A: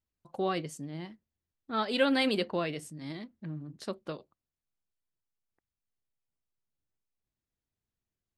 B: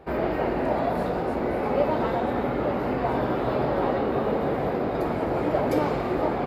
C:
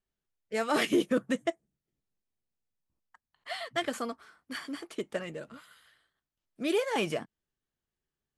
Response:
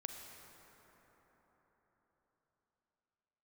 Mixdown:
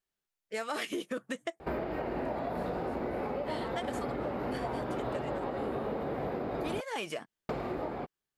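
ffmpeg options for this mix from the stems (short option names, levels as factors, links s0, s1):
-filter_complex "[1:a]adelay=1600,volume=0.376,asplit=3[s0][s1][s2];[s0]atrim=end=6.81,asetpts=PTS-STARTPTS,afade=t=out:st=6.806:d=0.004:c=hsin[s3];[s1]atrim=start=6.81:end=7.49,asetpts=PTS-STARTPTS,volume=0[s4];[s2]atrim=start=7.49,asetpts=PTS-STARTPTS,afade=t=in:d=0.004:c=hsin[s5];[s3][s4][s5]concat=n=3:v=0:a=1[s6];[2:a]lowshelf=f=300:g=-11,volume=1.19[s7];[s6]dynaudnorm=f=390:g=5:m=3.55,alimiter=limit=0.141:level=0:latency=1:release=325,volume=1[s8];[s7][s8]amix=inputs=2:normalize=0,acompressor=threshold=0.0224:ratio=4"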